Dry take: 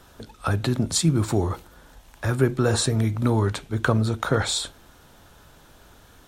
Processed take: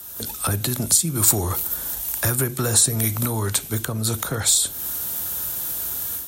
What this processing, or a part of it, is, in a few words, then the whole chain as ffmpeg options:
FM broadcast chain: -filter_complex "[0:a]highpass=f=49:w=0.5412,highpass=f=49:w=1.3066,dynaudnorm=f=140:g=3:m=3.55,acrossover=split=230|460[s0][s1][s2];[s0]acompressor=threshold=0.0891:ratio=4[s3];[s1]acompressor=threshold=0.0282:ratio=4[s4];[s2]acompressor=threshold=0.0501:ratio=4[s5];[s3][s4][s5]amix=inputs=3:normalize=0,aemphasis=mode=production:type=50fm,alimiter=limit=0.266:level=0:latency=1:release=333,asoftclip=type=hard:threshold=0.188,lowpass=f=15000:w=0.5412,lowpass=f=15000:w=1.3066,aemphasis=mode=production:type=50fm,volume=0.891"

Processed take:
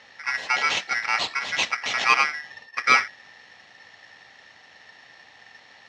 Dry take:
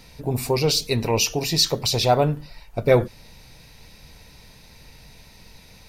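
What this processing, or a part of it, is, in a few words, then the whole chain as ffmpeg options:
ring modulator pedal into a guitar cabinet: -filter_complex "[0:a]bandreject=f=50:t=h:w=6,bandreject=f=100:t=h:w=6,bandreject=f=150:t=h:w=6,asettb=1/sr,asplit=3[s0][s1][s2];[s0]atrim=end=0.894[s3];[s1]atrim=start=0.89:end=1.9,asetpts=PTS-STARTPTS,afade=t=in:d=0.004:c=qsin,afade=t=out:st=1.006:d=0.004:c=qsin,equalizer=f=1900:t=o:w=1.3:g=-8[s4];[s2]atrim=start=1.896[s5];[s3][s4]acrossfade=d=0.004:c1=hsin:c2=qsin[s6];[s6][s5]acrossfade=d=0.004:c1=qsin:c2=hsin,aeval=exprs='val(0)*sgn(sin(2*PI*1800*n/s))':c=same,highpass=110,equalizer=f=160:t=q:w=4:g=-3,equalizer=f=350:t=q:w=4:g=-4,equalizer=f=770:t=q:w=4:g=5,equalizer=f=1600:t=q:w=4:g=-6,lowpass=f=4600:w=0.5412,lowpass=f=4600:w=1.3066"

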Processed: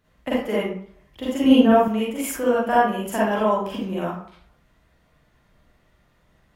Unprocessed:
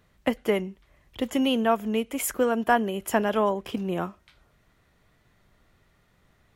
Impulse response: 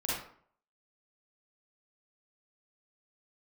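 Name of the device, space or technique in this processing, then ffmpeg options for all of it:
bathroom: -filter_complex "[1:a]atrim=start_sample=2205[s0];[0:a][s0]afir=irnorm=-1:irlink=0,asettb=1/sr,asplit=3[s1][s2][s3];[s1]atrim=end=1.444[s4];[s2]atrim=start=1.44:end=1.88,asetpts=PTS-STARTPTS,afade=t=in:d=0.004:c=qsin,afade=t=out:st=0.436:d=0.004:c=qsin,lowshelf=f=430:g=11.5[s5];[s3]atrim=start=1.876[s6];[s4][s5]acrossfade=d=0.004:c1=hsin:c2=qsin[s7];[s7][s6]acrossfade=d=0.004:c1=qsin:c2=hsin,volume=0.668"

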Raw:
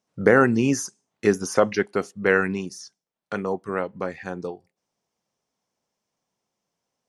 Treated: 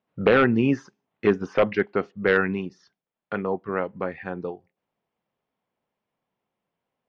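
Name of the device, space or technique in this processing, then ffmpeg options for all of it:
synthesiser wavefolder: -af "aeval=exprs='0.355*(abs(mod(val(0)/0.355+3,4)-2)-1)':c=same,lowpass=f=3200:w=0.5412,lowpass=f=3200:w=1.3066"

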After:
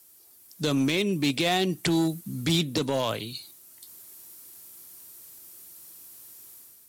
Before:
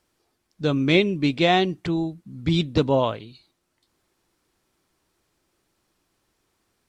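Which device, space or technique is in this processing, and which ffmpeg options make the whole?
FM broadcast chain: -filter_complex "[0:a]highpass=f=69:w=0.5412,highpass=f=69:w=1.3066,dynaudnorm=f=150:g=5:m=2.37,acrossover=split=140|3000[s0][s1][s2];[s0]acompressor=threshold=0.0112:ratio=4[s3];[s1]acompressor=threshold=0.112:ratio=4[s4];[s2]acompressor=threshold=0.0158:ratio=4[s5];[s3][s4][s5]amix=inputs=3:normalize=0,aemphasis=mode=production:type=50fm,alimiter=limit=0.168:level=0:latency=1:release=10,asoftclip=type=hard:threshold=0.119,lowpass=f=15000:w=0.5412,lowpass=f=15000:w=1.3066,aemphasis=mode=production:type=50fm"

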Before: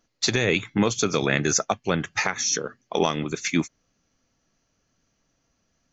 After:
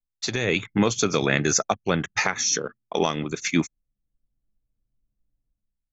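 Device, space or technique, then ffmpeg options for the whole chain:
voice memo with heavy noise removal: -af "anlmdn=0.251,dynaudnorm=f=130:g=7:m=5.01,volume=0.473"

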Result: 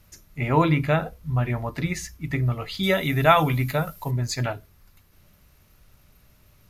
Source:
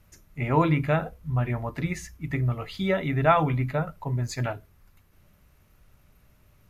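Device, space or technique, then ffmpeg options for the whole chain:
presence and air boost: -filter_complex "[0:a]asettb=1/sr,asplit=3[s0][s1][s2];[s0]atrim=end=2.834[s3];[s1]atrim=start=2.83:end=4.11,asetpts=PTS-STARTPTS,afade=t=in:d=0.004:c=qsin,afade=t=out:st=1.276:d=0.004:c=qsin,aemphasis=mode=production:type=75kf[s4];[s2]atrim=start=4.106[s5];[s3][s4]acrossfade=d=0.004:c1=hsin:c2=qsin[s6];[s6][s5]acrossfade=d=0.004:c1=qsin:c2=hsin,equalizer=f=4500:t=o:w=1.1:g=5.5,highshelf=f=9900:g=7,volume=1.26"

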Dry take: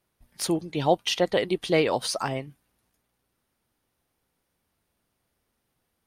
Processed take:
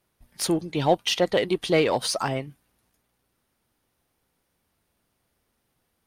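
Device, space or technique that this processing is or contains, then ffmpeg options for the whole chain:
parallel distortion: -filter_complex "[0:a]asplit=2[s0][s1];[s1]asoftclip=type=hard:threshold=0.0531,volume=0.376[s2];[s0][s2]amix=inputs=2:normalize=0"

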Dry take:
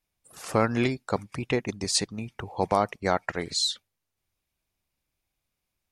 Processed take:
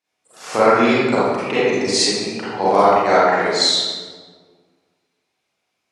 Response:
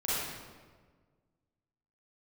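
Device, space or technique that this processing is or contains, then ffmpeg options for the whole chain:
supermarket ceiling speaker: -filter_complex "[0:a]highpass=290,lowpass=6800[s0];[1:a]atrim=start_sample=2205[s1];[s0][s1]afir=irnorm=-1:irlink=0,volume=1.78"

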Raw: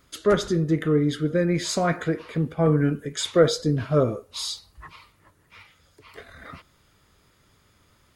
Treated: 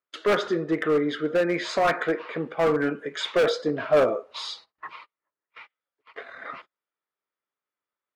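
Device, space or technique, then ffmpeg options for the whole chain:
walkie-talkie: -filter_complex "[0:a]agate=range=0.141:threshold=0.00355:ratio=16:detection=peak,highpass=490,lowpass=2500,asoftclip=type=hard:threshold=0.0668,agate=range=0.158:threshold=0.00251:ratio=16:detection=peak,asettb=1/sr,asplit=3[s0][s1][s2];[s0]atrim=end=3.674[s3];[s1]atrim=start=3.67:end=4.39,asetpts=PTS-STARTPTS,afade=t=in:d=0.004:c=qsin,afade=t=out:st=0.716:d=0.004:c=qsin,equalizer=f=640:w=3.8:g=6[s4];[s2]atrim=start=4.386[s5];[s3][s4]acrossfade=d=0.004:c1=hsin:c2=qsin[s6];[s6][s5]acrossfade=d=0.004:c1=qsin:c2=hsin,volume=2.11"

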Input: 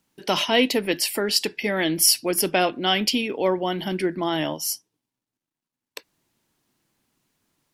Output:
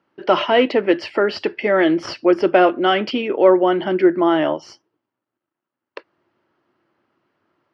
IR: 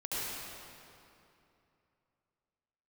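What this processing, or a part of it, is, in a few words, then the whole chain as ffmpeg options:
overdrive pedal into a guitar cabinet: -filter_complex "[0:a]asplit=2[s0][s1];[s1]highpass=f=720:p=1,volume=3.98,asoftclip=type=tanh:threshold=0.668[s2];[s0][s2]amix=inputs=2:normalize=0,lowpass=f=1700:p=1,volume=0.501,highpass=80,equalizer=f=98:t=q:w=4:g=7,equalizer=f=350:t=q:w=4:g=9,equalizer=f=580:t=q:w=4:g=6,equalizer=f=1300:t=q:w=4:g=6,equalizer=f=2400:t=q:w=4:g=-4,equalizer=f=3700:t=q:w=4:g=-9,lowpass=f=4100:w=0.5412,lowpass=f=4100:w=1.3066,volume=1.19"

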